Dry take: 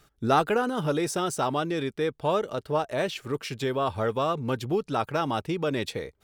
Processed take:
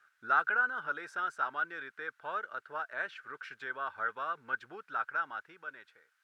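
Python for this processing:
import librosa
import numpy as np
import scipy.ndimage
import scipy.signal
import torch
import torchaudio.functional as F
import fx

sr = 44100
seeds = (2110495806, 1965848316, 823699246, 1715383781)

y = fx.fade_out_tail(x, sr, length_s=1.44)
y = fx.dmg_noise_colour(y, sr, seeds[0], colour='blue', level_db=-56.0)
y = fx.bandpass_q(y, sr, hz=1500.0, q=9.5)
y = y * 10.0 ** (8.0 / 20.0)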